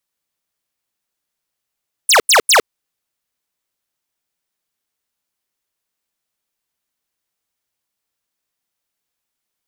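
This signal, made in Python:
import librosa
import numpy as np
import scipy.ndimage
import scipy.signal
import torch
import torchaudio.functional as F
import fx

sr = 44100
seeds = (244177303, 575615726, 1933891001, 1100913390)

y = fx.laser_zaps(sr, level_db=-9.5, start_hz=11000.0, end_hz=360.0, length_s=0.11, wave='square', shots=3, gap_s=0.09)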